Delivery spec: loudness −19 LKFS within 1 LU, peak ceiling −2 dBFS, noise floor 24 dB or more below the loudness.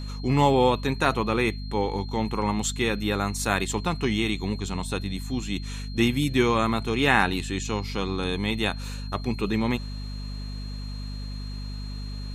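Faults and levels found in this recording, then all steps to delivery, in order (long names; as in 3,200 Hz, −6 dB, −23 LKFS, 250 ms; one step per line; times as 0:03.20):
mains hum 50 Hz; hum harmonics up to 250 Hz; level of the hum −31 dBFS; interfering tone 4,200 Hz; level of the tone −44 dBFS; integrated loudness −26.5 LKFS; sample peak −4.5 dBFS; target loudness −19.0 LKFS
→ hum removal 50 Hz, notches 5
notch filter 4,200 Hz, Q 30
level +7.5 dB
brickwall limiter −2 dBFS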